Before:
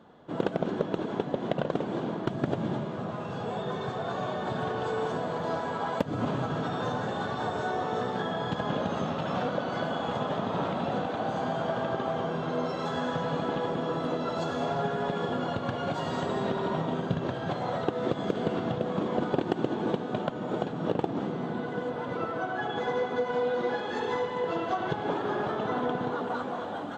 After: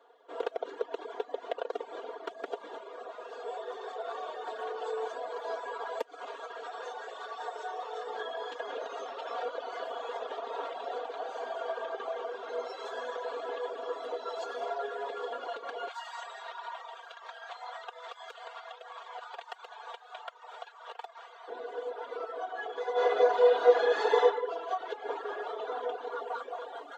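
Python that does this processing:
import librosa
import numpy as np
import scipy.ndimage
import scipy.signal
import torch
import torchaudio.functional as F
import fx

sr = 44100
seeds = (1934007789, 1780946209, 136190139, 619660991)

y = fx.highpass(x, sr, hz=630.0, slope=6, at=(6.01, 8.07))
y = fx.highpass(y, sr, hz=830.0, slope=24, at=(15.88, 21.48))
y = fx.reverb_throw(y, sr, start_s=22.92, length_s=1.33, rt60_s=1.1, drr_db=-10.5)
y = scipy.signal.sosfilt(scipy.signal.butter(8, 360.0, 'highpass', fs=sr, output='sos'), y)
y = y + 0.75 * np.pad(y, (int(4.3 * sr / 1000.0), 0))[:len(y)]
y = fx.dereverb_blind(y, sr, rt60_s=0.79)
y = y * librosa.db_to_amplitude(-5.5)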